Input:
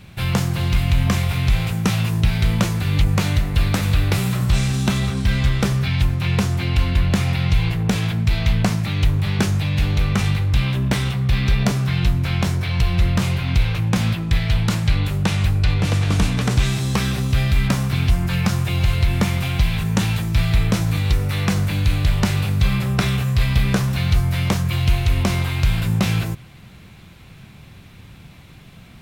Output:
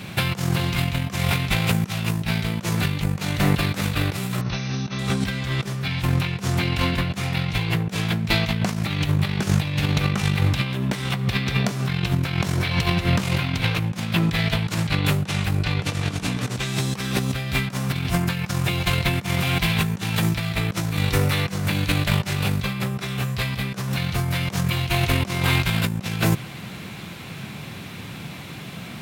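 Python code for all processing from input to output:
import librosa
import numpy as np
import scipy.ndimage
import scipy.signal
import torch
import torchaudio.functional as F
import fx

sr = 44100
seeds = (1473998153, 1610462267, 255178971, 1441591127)

y = fx.chain(x, sr, fx.brickwall_lowpass(high_hz=6400.0),
    fx.notch(hz=3200.0, q=15.0), at=(4.41, 4.99))
y = fx.chain(y, sr, fx.over_compress(threshold_db=-21.0, ratio=-1.0),
    fx.echo_single(ms=88, db=-18.0), at=(8.6, 13.79))
y = scipy.signal.sosfilt(scipy.signal.butter(2, 150.0, 'highpass', fs=sr, output='sos'), y)
y = fx.over_compress(y, sr, threshold_db=-28.0, ratio=-0.5)
y = y * librosa.db_to_amplitude(6.0)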